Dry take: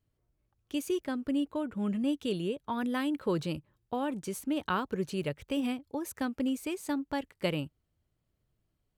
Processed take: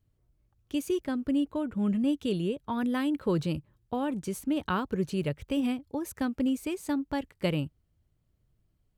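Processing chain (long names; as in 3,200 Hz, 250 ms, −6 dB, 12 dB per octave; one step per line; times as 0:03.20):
low-shelf EQ 210 Hz +8.5 dB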